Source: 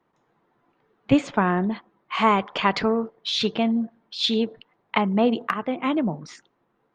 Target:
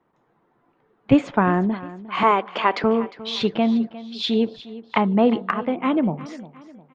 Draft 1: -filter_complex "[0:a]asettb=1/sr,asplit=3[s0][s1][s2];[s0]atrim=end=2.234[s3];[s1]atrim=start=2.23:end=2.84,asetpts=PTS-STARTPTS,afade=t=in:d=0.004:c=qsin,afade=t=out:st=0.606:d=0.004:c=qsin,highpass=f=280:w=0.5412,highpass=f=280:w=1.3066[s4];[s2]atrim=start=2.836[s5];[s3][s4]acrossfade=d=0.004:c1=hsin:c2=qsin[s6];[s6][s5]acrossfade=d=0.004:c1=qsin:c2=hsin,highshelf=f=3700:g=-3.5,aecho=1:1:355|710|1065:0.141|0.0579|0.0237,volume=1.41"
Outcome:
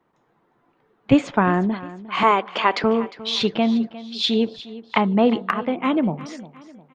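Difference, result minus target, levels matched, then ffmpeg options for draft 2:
8 kHz band +6.0 dB
-filter_complex "[0:a]asettb=1/sr,asplit=3[s0][s1][s2];[s0]atrim=end=2.234[s3];[s1]atrim=start=2.23:end=2.84,asetpts=PTS-STARTPTS,afade=t=in:d=0.004:c=qsin,afade=t=out:st=0.606:d=0.004:c=qsin,highpass=f=280:w=0.5412,highpass=f=280:w=1.3066[s4];[s2]atrim=start=2.836[s5];[s3][s4]acrossfade=d=0.004:c1=hsin:c2=qsin[s6];[s6][s5]acrossfade=d=0.004:c1=qsin:c2=hsin,highshelf=f=3700:g=-12,aecho=1:1:355|710|1065:0.141|0.0579|0.0237,volume=1.41"

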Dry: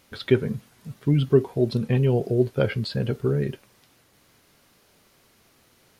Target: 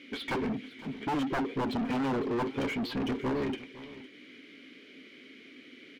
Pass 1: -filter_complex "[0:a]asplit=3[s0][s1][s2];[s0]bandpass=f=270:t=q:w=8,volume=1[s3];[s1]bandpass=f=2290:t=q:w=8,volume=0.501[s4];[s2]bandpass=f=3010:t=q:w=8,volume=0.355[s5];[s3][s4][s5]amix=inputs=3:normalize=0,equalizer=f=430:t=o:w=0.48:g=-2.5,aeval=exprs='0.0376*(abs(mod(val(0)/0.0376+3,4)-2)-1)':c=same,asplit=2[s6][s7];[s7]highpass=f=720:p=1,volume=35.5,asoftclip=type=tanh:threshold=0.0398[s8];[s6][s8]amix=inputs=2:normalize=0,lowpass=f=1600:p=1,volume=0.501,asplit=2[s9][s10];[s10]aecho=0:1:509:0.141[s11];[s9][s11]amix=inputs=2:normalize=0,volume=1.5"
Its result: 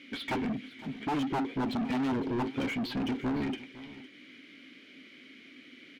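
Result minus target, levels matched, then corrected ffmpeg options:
500 Hz band -3.5 dB
-filter_complex "[0:a]asplit=3[s0][s1][s2];[s0]bandpass=f=270:t=q:w=8,volume=1[s3];[s1]bandpass=f=2290:t=q:w=8,volume=0.501[s4];[s2]bandpass=f=3010:t=q:w=8,volume=0.355[s5];[s3][s4][s5]amix=inputs=3:normalize=0,equalizer=f=430:t=o:w=0.48:g=6,aeval=exprs='0.0376*(abs(mod(val(0)/0.0376+3,4)-2)-1)':c=same,asplit=2[s6][s7];[s7]highpass=f=720:p=1,volume=35.5,asoftclip=type=tanh:threshold=0.0398[s8];[s6][s8]amix=inputs=2:normalize=0,lowpass=f=1600:p=1,volume=0.501,asplit=2[s9][s10];[s10]aecho=0:1:509:0.141[s11];[s9][s11]amix=inputs=2:normalize=0,volume=1.5"

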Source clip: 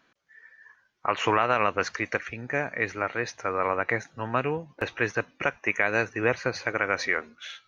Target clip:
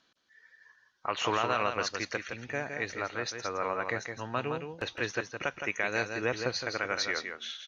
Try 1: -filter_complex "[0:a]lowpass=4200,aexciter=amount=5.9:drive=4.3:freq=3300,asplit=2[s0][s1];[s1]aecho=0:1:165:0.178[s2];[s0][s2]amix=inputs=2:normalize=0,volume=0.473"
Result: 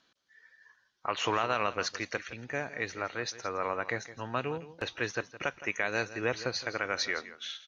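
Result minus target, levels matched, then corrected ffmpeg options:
echo-to-direct -8.5 dB
-filter_complex "[0:a]lowpass=4200,aexciter=amount=5.9:drive=4.3:freq=3300,asplit=2[s0][s1];[s1]aecho=0:1:165:0.473[s2];[s0][s2]amix=inputs=2:normalize=0,volume=0.473"

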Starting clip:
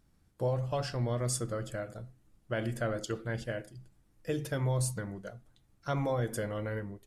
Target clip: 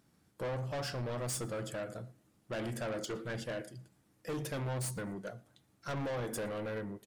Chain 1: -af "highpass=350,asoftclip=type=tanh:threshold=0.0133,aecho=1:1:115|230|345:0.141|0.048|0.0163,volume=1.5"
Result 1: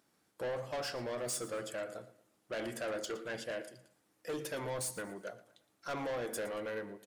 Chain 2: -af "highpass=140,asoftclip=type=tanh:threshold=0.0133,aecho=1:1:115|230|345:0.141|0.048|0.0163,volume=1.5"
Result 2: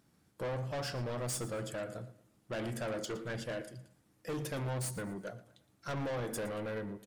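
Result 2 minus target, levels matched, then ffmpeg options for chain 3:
echo-to-direct +9.5 dB
-af "highpass=140,asoftclip=type=tanh:threshold=0.0133,aecho=1:1:115|230:0.0473|0.0161,volume=1.5"

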